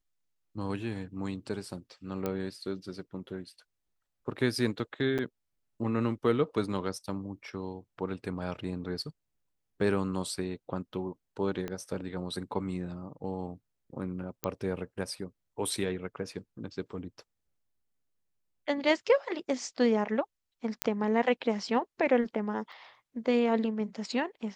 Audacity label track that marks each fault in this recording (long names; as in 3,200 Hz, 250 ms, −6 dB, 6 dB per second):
2.260000	2.260000	click −18 dBFS
5.180000	5.190000	drop-out 7.4 ms
11.680000	11.680000	click −21 dBFS
14.440000	14.440000	click −13 dBFS
20.820000	20.820000	click −8 dBFS
22.720000	22.720000	drop-out 4.1 ms